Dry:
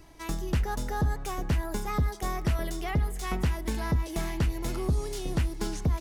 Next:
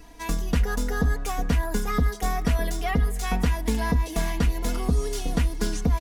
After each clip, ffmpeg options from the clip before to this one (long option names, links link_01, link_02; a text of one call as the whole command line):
ffmpeg -i in.wav -af "aecho=1:1:4.2:0.83,volume=3dB" out.wav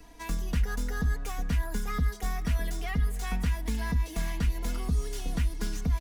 ffmpeg -i in.wav -filter_complex "[0:a]acrossover=split=210|1300|2200[link_01][link_02][link_03][link_04];[link_02]acompressor=threshold=-38dB:ratio=6[link_05];[link_04]aeval=exprs='clip(val(0),-1,0.00596)':channel_layout=same[link_06];[link_01][link_05][link_03][link_06]amix=inputs=4:normalize=0,volume=-4dB" out.wav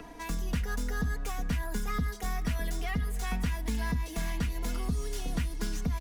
ffmpeg -i in.wav -filter_complex "[0:a]acrossover=split=110|2100[link_01][link_02][link_03];[link_01]alimiter=level_in=4dB:limit=-24dB:level=0:latency=1,volume=-4dB[link_04];[link_02]acompressor=mode=upward:threshold=-39dB:ratio=2.5[link_05];[link_04][link_05][link_03]amix=inputs=3:normalize=0" out.wav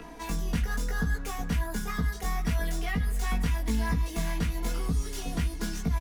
ffmpeg -i in.wav -filter_complex "[0:a]flanger=delay=0.8:depth=9.4:regen=-84:speed=1.2:shape=sinusoidal,asplit=2[link_01][link_02];[link_02]adelay=18,volume=-2.5dB[link_03];[link_01][link_03]amix=inputs=2:normalize=0,volume=5dB" out.wav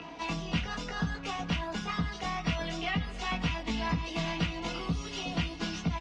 ffmpeg -i in.wav -af "highpass=120,equalizer=frequency=230:width_type=q:width=4:gain=-6,equalizer=frequency=430:width_type=q:width=4:gain=-8,equalizer=frequency=1700:width_type=q:width=4:gain=-7,equalizer=frequency=2800:width_type=q:width=4:gain=8,lowpass=frequency=5300:width=0.5412,lowpass=frequency=5300:width=1.3066,volume=2.5dB" -ar 44100 -c:a aac -b:a 32k out.aac